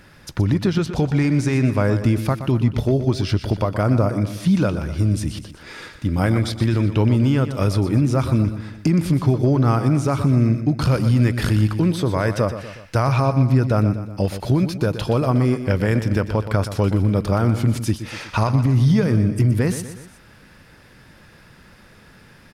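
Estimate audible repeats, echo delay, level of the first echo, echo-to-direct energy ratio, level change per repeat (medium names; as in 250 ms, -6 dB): 3, 122 ms, -11.0 dB, -10.0 dB, -6.0 dB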